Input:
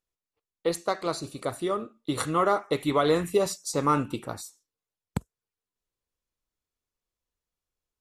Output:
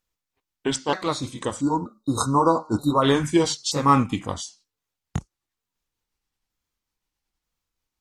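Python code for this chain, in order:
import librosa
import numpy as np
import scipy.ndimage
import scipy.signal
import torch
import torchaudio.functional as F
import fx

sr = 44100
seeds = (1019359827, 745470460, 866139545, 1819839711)

y = fx.pitch_ramps(x, sr, semitones=-5.0, every_ms=929)
y = fx.graphic_eq_31(y, sr, hz=(400, 630, 10000), db=(-8, -5, -5))
y = fx.spec_erase(y, sr, start_s=1.61, length_s=1.42, low_hz=1500.0, high_hz=3700.0)
y = y * librosa.db_to_amplitude(8.0)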